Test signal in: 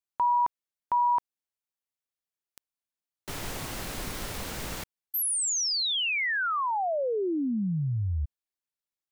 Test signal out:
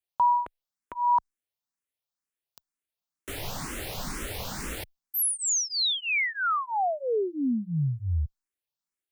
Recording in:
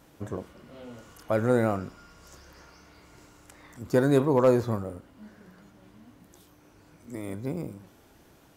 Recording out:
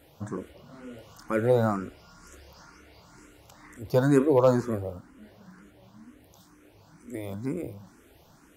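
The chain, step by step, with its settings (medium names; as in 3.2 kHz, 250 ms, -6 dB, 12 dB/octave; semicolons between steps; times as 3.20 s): barber-pole phaser +2.1 Hz; trim +3.5 dB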